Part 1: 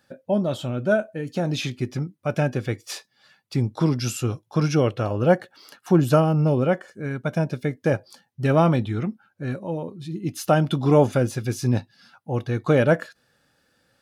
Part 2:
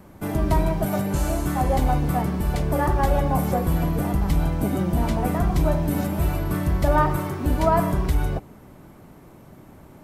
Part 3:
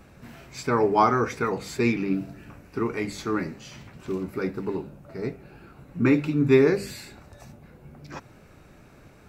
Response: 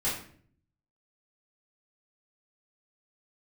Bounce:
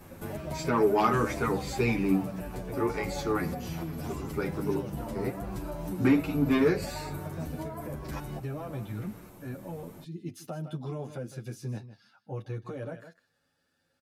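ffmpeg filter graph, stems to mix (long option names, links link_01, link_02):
-filter_complex "[0:a]alimiter=limit=-11dB:level=0:latency=1:release=448,volume=-7.5dB,asplit=2[link_01][link_02];[link_02]volume=-18dB[link_03];[1:a]acompressor=threshold=-23dB:ratio=6,highshelf=frequency=5100:gain=9.5,volume=-1dB[link_04];[2:a]volume=1dB[link_05];[link_01][link_04]amix=inputs=2:normalize=0,acrossover=split=110|1200|7100[link_06][link_07][link_08][link_09];[link_06]acompressor=threshold=-38dB:ratio=4[link_10];[link_07]acompressor=threshold=-28dB:ratio=4[link_11];[link_08]acompressor=threshold=-49dB:ratio=4[link_12];[link_09]acompressor=threshold=-49dB:ratio=4[link_13];[link_10][link_11][link_12][link_13]amix=inputs=4:normalize=0,alimiter=limit=-23.5dB:level=0:latency=1:release=338,volume=0dB[link_14];[link_03]aecho=0:1:157:1[link_15];[link_05][link_14][link_15]amix=inputs=3:normalize=0,asoftclip=type=tanh:threshold=-12dB,asplit=2[link_16][link_17];[link_17]adelay=9,afreqshift=-0.29[link_18];[link_16][link_18]amix=inputs=2:normalize=1"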